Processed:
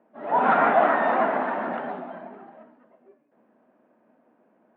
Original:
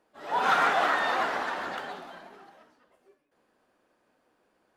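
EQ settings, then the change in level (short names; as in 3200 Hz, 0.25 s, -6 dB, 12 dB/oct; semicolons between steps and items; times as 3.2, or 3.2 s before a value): speaker cabinet 150–2400 Hz, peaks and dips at 150 Hz +3 dB, 230 Hz +8 dB, 640 Hz +9 dB, 930 Hz +4 dB; bell 230 Hz +8.5 dB 2 oct; 0.0 dB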